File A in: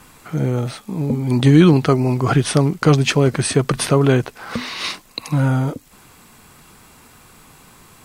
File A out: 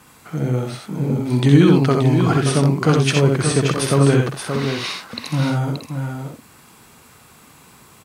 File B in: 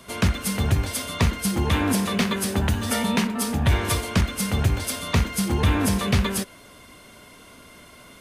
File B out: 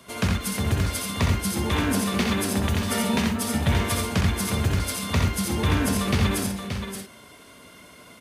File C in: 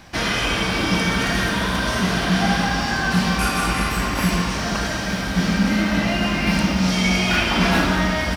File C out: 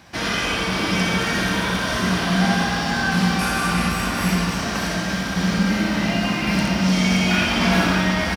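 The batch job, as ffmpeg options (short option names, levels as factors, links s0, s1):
-filter_complex "[0:a]highpass=65,asplit=2[s0][s1];[s1]aecho=0:1:64|86|577|628:0.531|0.473|0.447|0.251[s2];[s0][s2]amix=inputs=2:normalize=0,volume=0.708"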